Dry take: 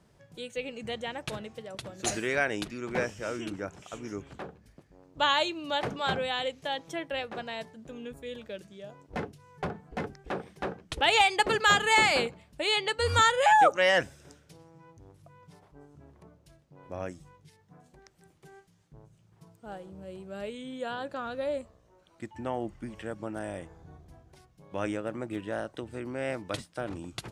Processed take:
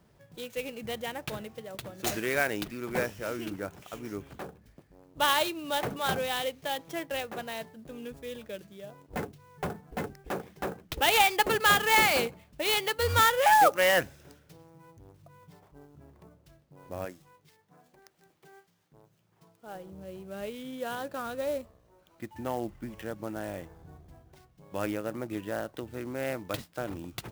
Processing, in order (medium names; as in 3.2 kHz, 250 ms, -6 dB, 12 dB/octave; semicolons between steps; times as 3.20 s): 17.05–19.75 s: high-pass 350 Hz 6 dB/octave; sampling jitter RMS 0.027 ms